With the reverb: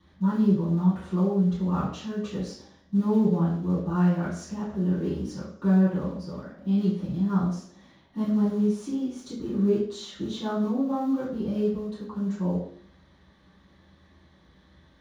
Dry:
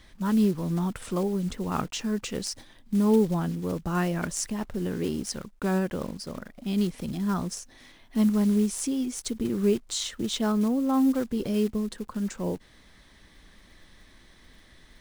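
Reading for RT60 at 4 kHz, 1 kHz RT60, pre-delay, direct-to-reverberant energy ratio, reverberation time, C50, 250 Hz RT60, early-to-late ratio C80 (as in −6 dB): 0.65 s, 0.55 s, 3 ms, −11.0 dB, 0.55 s, 3.5 dB, 0.75 s, 7.5 dB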